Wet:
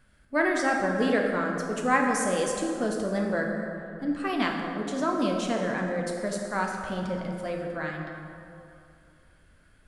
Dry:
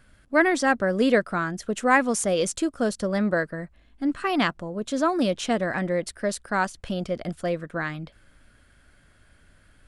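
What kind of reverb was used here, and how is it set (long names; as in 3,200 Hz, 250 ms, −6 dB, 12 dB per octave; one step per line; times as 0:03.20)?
dense smooth reverb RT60 2.6 s, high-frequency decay 0.5×, DRR 0 dB
level −6 dB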